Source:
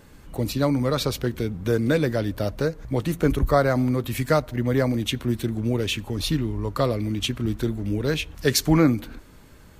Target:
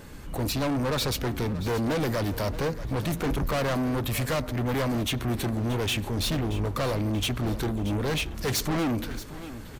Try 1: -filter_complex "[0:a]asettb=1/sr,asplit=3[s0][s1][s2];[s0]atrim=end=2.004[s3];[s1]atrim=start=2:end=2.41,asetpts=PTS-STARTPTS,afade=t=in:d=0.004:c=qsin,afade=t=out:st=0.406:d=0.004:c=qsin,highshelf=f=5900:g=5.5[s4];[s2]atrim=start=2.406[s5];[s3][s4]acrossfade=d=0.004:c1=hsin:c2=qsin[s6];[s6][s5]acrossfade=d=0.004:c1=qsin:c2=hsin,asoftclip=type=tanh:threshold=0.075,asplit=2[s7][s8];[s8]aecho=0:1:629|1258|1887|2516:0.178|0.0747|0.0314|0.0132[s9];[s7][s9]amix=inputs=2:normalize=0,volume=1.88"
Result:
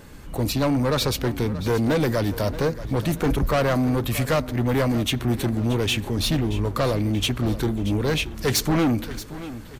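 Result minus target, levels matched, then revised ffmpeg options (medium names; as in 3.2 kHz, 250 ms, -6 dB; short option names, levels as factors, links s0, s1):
saturation: distortion -4 dB
-filter_complex "[0:a]asettb=1/sr,asplit=3[s0][s1][s2];[s0]atrim=end=2.004[s3];[s1]atrim=start=2:end=2.41,asetpts=PTS-STARTPTS,afade=t=in:d=0.004:c=qsin,afade=t=out:st=0.406:d=0.004:c=qsin,highshelf=f=5900:g=5.5[s4];[s2]atrim=start=2.406[s5];[s3][s4]acrossfade=d=0.004:c1=hsin:c2=qsin[s6];[s6][s5]acrossfade=d=0.004:c1=qsin:c2=hsin,asoftclip=type=tanh:threshold=0.0316,asplit=2[s7][s8];[s8]aecho=0:1:629|1258|1887|2516:0.178|0.0747|0.0314|0.0132[s9];[s7][s9]amix=inputs=2:normalize=0,volume=1.88"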